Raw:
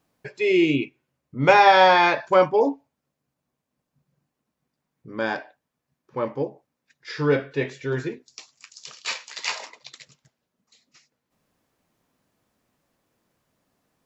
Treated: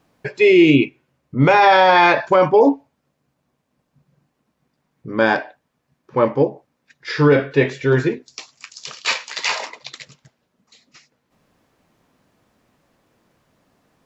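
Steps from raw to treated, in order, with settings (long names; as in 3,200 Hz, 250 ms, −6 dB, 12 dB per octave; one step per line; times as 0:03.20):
high-shelf EQ 6,300 Hz −9 dB
boost into a limiter +13.5 dB
level −3 dB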